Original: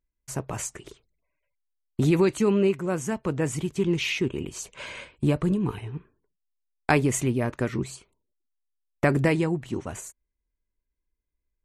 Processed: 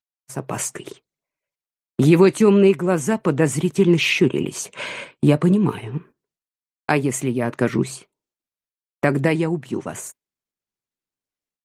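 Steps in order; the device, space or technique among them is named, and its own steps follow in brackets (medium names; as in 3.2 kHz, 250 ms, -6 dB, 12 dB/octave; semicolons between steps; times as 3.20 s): high-pass 43 Hz 12 dB/octave; video call (high-pass 130 Hz 24 dB/octave; level rider gain up to 12 dB; gate -39 dBFS, range -14 dB; trim -1 dB; Opus 32 kbps 48 kHz)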